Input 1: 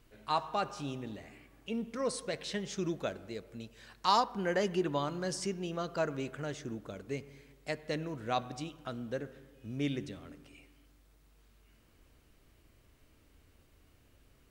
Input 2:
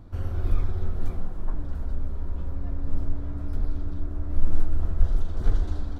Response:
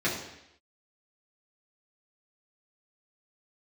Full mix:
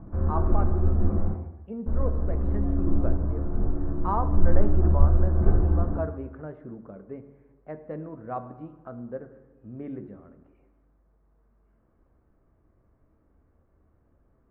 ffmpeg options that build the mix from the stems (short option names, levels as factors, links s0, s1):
-filter_complex "[0:a]volume=0.944,asplit=2[s0][s1];[s1]volume=0.112[s2];[1:a]volume=1.06,asplit=3[s3][s4][s5];[s3]atrim=end=1.35,asetpts=PTS-STARTPTS,afade=t=out:st=1.346:d=0.004:c=hsin[s6];[s4]atrim=start=1.35:end=1.86,asetpts=PTS-STARTPTS,volume=0[s7];[s5]atrim=start=1.86,asetpts=PTS-STARTPTS,afade=t=in:d=0.004:c=hsin[s8];[s6][s7][s8]concat=n=3:v=0:a=1,asplit=2[s9][s10];[s10]volume=0.447[s11];[2:a]atrim=start_sample=2205[s12];[s2][s11]amix=inputs=2:normalize=0[s13];[s13][s12]afir=irnorm=-1:irlink=0[s14];[s0][s9][s14]amix=inputs=3:normalize=0,lowpass=f=1300:w=0.5412,lowpass=f=1300:w=1.3066"